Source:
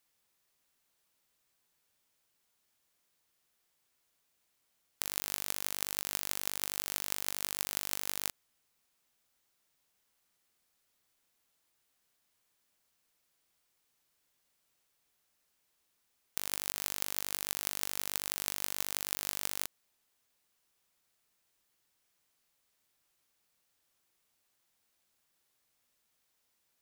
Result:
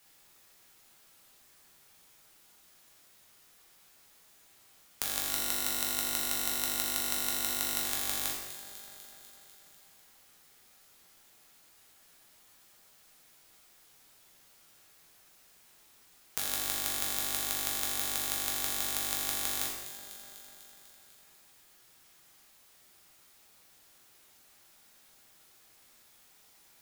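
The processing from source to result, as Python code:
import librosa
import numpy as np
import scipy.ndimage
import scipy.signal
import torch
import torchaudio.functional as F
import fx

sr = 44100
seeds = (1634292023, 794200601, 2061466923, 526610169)

y = fx.ripple_eq(x, sr, per_octave=2.0, db=10, at=(5.28, 7.83))
y = fx.echo_alternate(y, sr, ms=124, hz=2300.0, feedback_pct=74, wet_db=-12.5)
y = fx.rev_plate(y, sr, seeds[0], rt60_s=0.82, hf_ratio=0.85, predelay_ms=0, drr_db=-2.5)
y = fx.band_squash(y, sr, depth_pct=40)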